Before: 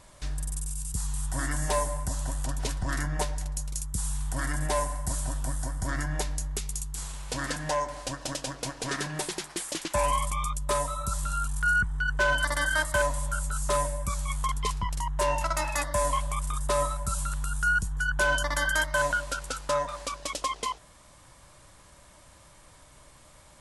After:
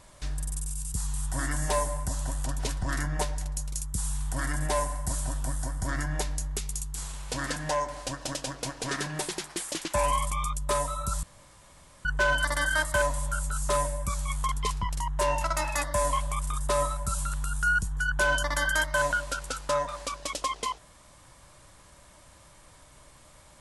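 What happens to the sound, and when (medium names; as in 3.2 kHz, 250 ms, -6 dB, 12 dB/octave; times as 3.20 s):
11.23–12.05 s: room tone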